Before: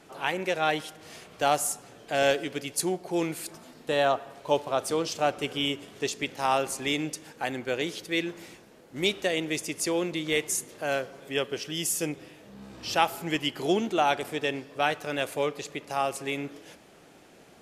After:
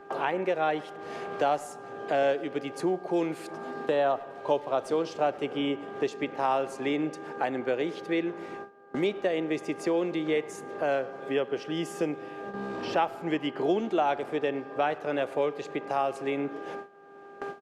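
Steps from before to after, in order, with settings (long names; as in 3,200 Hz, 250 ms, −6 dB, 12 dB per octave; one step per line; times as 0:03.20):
resonant band-pass 510 Hz, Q 0.56
hum with harmonics 400 Hz, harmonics 4, −51 dBFS −4 dB per octave
far-end echo of a speakerphone 100 ms, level −22 dB
noise gate with hold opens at −39 dBFS
multiband upward and downward compressor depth 70%
level +1.5 dB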